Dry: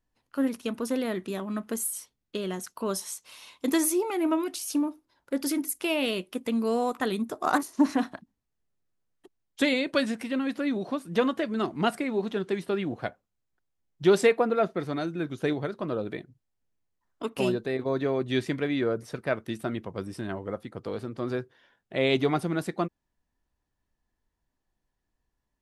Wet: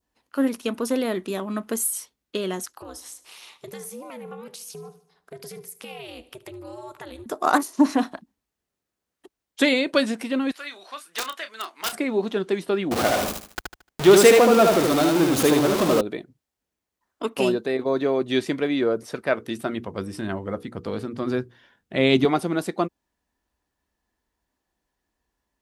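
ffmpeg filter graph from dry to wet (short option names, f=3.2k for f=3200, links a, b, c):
-filter_complex "[0:a]asettb=1/sr,asplit=3[a][b][c];[a]atrim=end=2.664[d];[b]atrim=start=2.66:end=7.26,asetpts=PTS-STARTPTS,afade=t=in:d=0.004:c=qsin,afade=t=out:st=4.596:d=0.004:c=qsin,aeval=exprs='val(0)*sin(2*PI*130*n/s)':c=same,acompressor=threshold=-44dB:ratio=3:attack=3.2:release=140:knee=1:detection=peak,aecho=1:1:75|150|225|300|375:0.112|0.0628|0.0352|0.0197|0.011,atrim=end_sample=202860[e];[c]atrim=start=7.256[f];[d][e]acrossfade=d=0.004:c1=hsin:c2=qsin[g];[g][f]acrossfade=d=0.004:c1=qsin:c2=hsin,asettb=1/sr,asplit=3[h][i][j];[h]atrim=end=10.514[k];[i]atrim=start=10.51:end=11.93,asetpts=PTS-STARTPTS,afade=t=in:d=0.004:c=qsin,afade=t=out:st=1.416:d=0.004:c=qsin,highpass=1.4k,aeval=exprs='(mod(15.8*val(0)+1,2)-1)/15.8':c=same,asplit=2[l][m];[m]adelay=31,volume=-10dB[n];[l][n]amix=inputs=2:normalize=0,atrim=end_sample=62622[o];[j]atrim=start=11.926[p];[k][o]acrossfade=d=0.004:c1=hsin:c2=qsin[q];[q][p]acrossfade=d=0.004:c1=qsin:c2=hsin,asettb=1/sr,asplit=3[r][s][t];[r]atrim=end=12.914[u];[s]atrim=start=12.91:end=16.01,asetpts=PTS-STARTPTS,afade=t=in:d=0.004:c=qsin,afade=t=out:st=3.096:d=0.004:c=qsin,aeval=exprs='val(0)+0.5*0.0631*sgn(val(0))':c=same,aecho=1:1:75|150|225|300:0.708|0.205|0.0595|0.0173,atrim=end_sample=136710[v];[t]atrim=start=16.006[w];[u][v]acrossfade=d=0.004:c1=hsin:c2=qsin[x];[x][w]acrossfade=d=0.004:c1=qsin:c2=hsin,asettb=1/sr,asplit=3[y][z][aa];[y]atrim=end=19.234[ab];[z]atrim=start=19.23:end=22.25,asetpts=PTS-STARTPTS,afade=t=in:d=0.004:c=qsin,afade=t=out:st=3.016:d=0.004:c=qsin,bandreject=f=60:t=h:w=6,bandreject=f=120:t=h:w=6,bandreject=f=180:t=h:w=6,bandreject=f=240:t=h:w=6,bandreject=f=300:t=h:w=6,bandreject=f=360:t=h:w=6,bandreject=f=420:t=h:w=6,bandreject=f=480:t=h:w=6,asubboost=boost=5:cutoff=250[ac];[aa]atrim=start=22.246[ad];[ab][ac]acrossfade=d=0.004:c1=hsin:c2=qsin[ae];[ae][ad]acrossfade=d=0.004:c1=qsin:c2=hsin,adynamicequalizer=threshold=0.00501:dfrequency=1800:dqfactor=1.5:tfrequency=1800:tqfactor=1.5:attack=5:release=100:ratio=0.375:range=2.5:mode=cutabove:tftype=bell,highpass=56,equalizer=f=120:t=o:w=1.1:g=-10,volume=6dB"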